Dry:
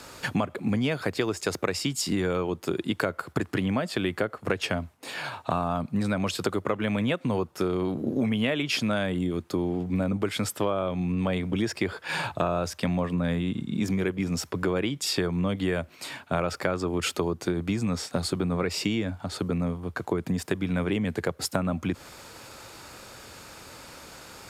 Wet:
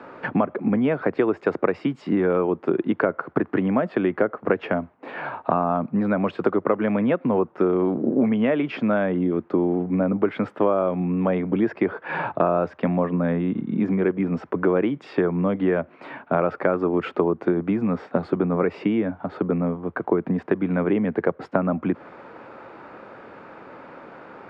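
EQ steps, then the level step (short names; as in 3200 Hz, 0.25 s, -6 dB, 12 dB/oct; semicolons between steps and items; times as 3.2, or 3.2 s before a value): three-band isolator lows -19 dB, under 170 Hz, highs -22 dB, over 2400 Hz; tape spacing loss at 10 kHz 30 dB; low shelf 69 Hz -5 dB; +9.0 dB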